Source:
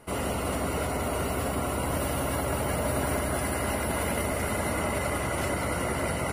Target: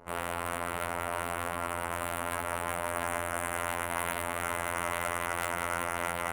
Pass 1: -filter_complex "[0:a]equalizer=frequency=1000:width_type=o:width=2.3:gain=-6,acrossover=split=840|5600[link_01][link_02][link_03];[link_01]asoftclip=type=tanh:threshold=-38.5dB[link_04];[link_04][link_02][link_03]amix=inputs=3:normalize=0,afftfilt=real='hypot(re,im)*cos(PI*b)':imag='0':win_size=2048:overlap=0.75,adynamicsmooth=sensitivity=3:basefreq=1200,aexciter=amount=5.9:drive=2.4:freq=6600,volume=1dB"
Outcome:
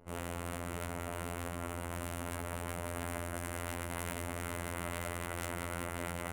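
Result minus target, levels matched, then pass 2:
1,000 Hz band −3.5 dB
-filter_complex "[0:a]equalizer=frequency=1000:width_type=o:width=2.3:gain=5.5,acrossover=split=840|5600[link_01][link_02][link_03];[link_01]asoftclip=type=tanh:threshold=-38.5dB[link_04];[link_04][link_02][link_03]amix=inputs=3:normalize=0,afftfilt=real='hypot(re,im)*cos(PI*b)':imag='0':win_size=2048:overlap=0.75,adynamicsmooth=sensitivity=3:basefreq=1200,aexciter=amount=5.9:drive=2.4:freq=6600,volume=1dB"

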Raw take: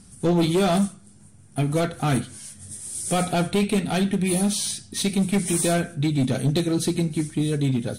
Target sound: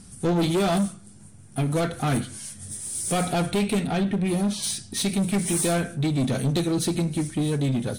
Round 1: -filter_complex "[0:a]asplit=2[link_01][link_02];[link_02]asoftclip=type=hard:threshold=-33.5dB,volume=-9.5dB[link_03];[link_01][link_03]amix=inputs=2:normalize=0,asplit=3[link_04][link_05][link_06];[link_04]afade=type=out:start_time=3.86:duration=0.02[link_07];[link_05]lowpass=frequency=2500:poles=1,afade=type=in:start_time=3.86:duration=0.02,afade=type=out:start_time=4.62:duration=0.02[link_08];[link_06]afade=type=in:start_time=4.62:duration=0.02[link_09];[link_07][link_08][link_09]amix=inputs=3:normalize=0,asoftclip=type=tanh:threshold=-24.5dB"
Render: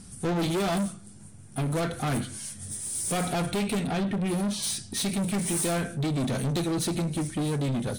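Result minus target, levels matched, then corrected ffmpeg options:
soft clipping: distortion +8 dB
-filter_complex "[0:a]asplit=2[link_01][link_02];[link_02]asoftclip=type=hard:threshold=-33.5dB,volume=-9.5dB[link_03];[link_01][link_03]amix=inputs=2:normalize=0,asplit=3[link_04][link_05][link_06];[link_04]afade=type=out:start_time=3.86:duration=0.02[link_07];[link_05]lowpass=frequency=2500:poles=1,afade=type=in:start_time=3.86:duration=0.02,afade=type=out:start_time=4.62:duration=0.02[link_08];[link_06]afade=type=in:start_time=4.62:duration=0.02[link_09];[link_07][link_08][link_09]amix=inputs=3:normalize=0,asoftclip=type=tanh:threshold=-17.5dB"

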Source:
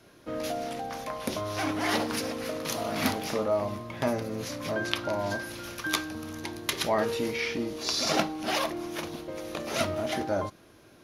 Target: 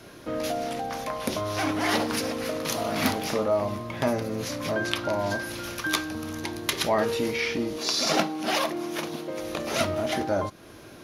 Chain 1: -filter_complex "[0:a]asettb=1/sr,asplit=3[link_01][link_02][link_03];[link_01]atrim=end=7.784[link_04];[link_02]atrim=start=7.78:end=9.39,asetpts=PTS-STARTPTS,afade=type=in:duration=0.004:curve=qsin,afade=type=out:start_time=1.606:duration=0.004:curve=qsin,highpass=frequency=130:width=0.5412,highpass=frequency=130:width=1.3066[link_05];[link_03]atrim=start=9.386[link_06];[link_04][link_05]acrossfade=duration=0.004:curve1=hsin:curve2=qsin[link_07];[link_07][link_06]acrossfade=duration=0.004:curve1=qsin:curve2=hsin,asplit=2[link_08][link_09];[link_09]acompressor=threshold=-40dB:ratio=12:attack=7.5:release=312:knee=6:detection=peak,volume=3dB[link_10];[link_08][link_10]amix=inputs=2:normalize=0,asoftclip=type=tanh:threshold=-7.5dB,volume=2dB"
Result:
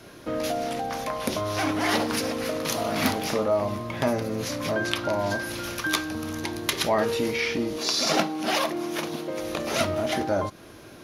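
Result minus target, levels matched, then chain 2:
downward compressor: peak gain reduction −6.5 dB
-filter_complex "[0:a]asettb=1/sr,asplit=3[link_01][link_02][link_03];[link_01]atrim=end=7.784[link_04];[link_02]atrim=start=7.78:end=9.39,asetpts=PTS-STARTPTS,afade=type=in:duration=0.004:curve=qsin,afade=type=out:start_time=1.606:duration=0.004:curve=qsin,highpass=frequency=130:width=0.5412,highpass=frequency=130:width=1.3066[link_05];[link_03]atrim=start=9.386[link_06];[link_04][link_05]acrossfade=duration=0.004:curve1=hsin:curve2=qsin[link_07];[link_07][link_06]acrossfade=duration=0.004:curve1=qsin:curve2=hsin,asplit=2[link_08][link_09];[link_09]acompressor=threshold=-47dB:ratio=12:attack=7.5:release=312:knee=6:detection=peak,volume=3dB[link_10];[link_08][link_10]amix=inputs=2:normalize=0,asoftclip=type=tanh:threshold=-7.5dB,volume=2dB"

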